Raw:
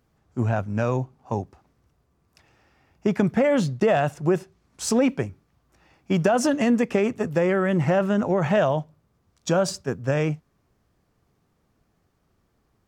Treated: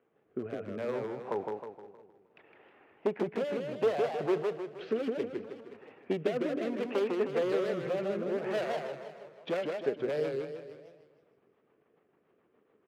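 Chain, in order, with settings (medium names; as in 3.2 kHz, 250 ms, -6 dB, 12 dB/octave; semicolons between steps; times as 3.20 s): steep low-pass 3 kHz 36 dB/octave; wavefolder -16.5 dBFS; peak limiter -27 dBFS, peak gain reduction 10.5 dB; peaking EQ 430 Hz +8.5 dB 0.55 oct; transient shaper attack +6 dB, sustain -7 dB; high-pass 300 Hz 12 dB/octave; delay 523 ms -19.5 dB; rotary cabinet horn 0.65 Hz, later 7 Hz, at 8.51 s; modulated delay 156 ms, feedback 45%, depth 192 cents, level -3.5 dB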